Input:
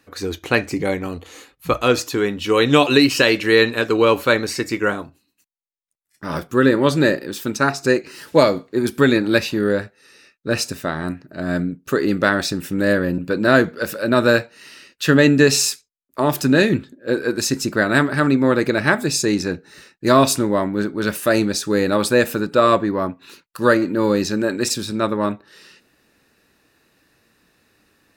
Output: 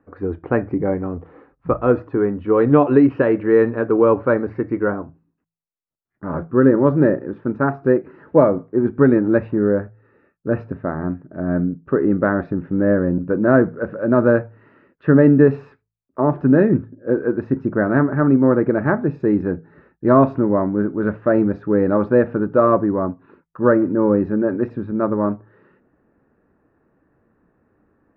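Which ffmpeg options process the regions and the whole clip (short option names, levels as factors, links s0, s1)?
-filter_complex "[0:a]asettb=1/sr,asplit=3[s0][s1][s2];[s0]atrim=end=19.204[s3];[s1]atrim=start=19.2:end=22.66,asetpts=PTS-STARTPTS,afade=t=in:d=0.004:c=qsin,afade=t=out:st=3.456:d=0.004:c=qsin,lowpass=10000,highshelf=f=4300:g=6.5[s4];[s2]atrim=start=22.656[s5];[s3][s4]acrossfade=d=0.004:c1=hsin:c2=qsin[s6];[s6][s5]acrossfade=d=0.004:c1=qsin:c2=hsin,lowpass=f=1500:w=0.5412,lowpass=f=1500:w=1.3066,tiltshelf=f=890:g=4,bandreject=f=54.94:t=h:w=4,bandreject=f=109.88:t=h:w=4,bandreject=f=164.82:t=h:w=4,volume=0.891"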